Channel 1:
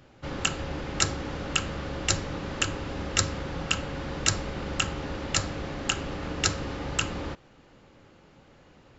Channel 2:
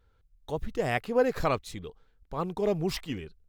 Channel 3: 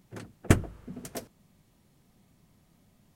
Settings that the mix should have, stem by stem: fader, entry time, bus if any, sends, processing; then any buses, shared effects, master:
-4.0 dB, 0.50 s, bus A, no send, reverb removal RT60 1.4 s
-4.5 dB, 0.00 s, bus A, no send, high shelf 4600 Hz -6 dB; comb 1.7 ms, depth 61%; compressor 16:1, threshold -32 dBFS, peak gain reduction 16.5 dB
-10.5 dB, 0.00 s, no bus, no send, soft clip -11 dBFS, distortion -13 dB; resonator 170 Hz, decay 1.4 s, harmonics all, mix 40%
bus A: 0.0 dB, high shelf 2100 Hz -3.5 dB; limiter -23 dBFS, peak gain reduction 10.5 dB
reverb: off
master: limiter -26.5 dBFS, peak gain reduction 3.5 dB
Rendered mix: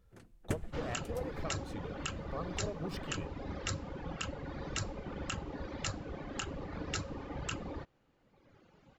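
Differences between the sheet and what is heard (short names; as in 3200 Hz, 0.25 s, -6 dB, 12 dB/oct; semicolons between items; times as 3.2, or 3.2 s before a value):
stem 3: missing soft clip -11 dBFS, distortion -13 dB; master: missing limiter -26.5 dBFS, peak gain reduction 3.5 dB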